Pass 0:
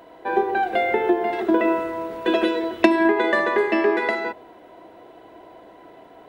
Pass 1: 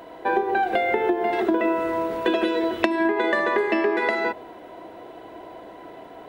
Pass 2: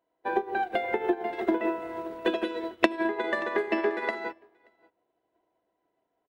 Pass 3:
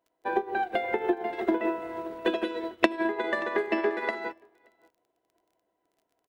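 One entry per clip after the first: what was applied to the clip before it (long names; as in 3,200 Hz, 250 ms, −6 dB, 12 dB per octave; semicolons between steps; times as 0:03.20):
downward compressor 6 to 1, threshold −23 dBFS, peak gain reduction 13 dB; level +4.5 dB
single-tap delay 579 ms −13 dB; expander for the loud parts 2.5 to 1, over −41 dBFS
surface crackle 28 per second −53 dBFS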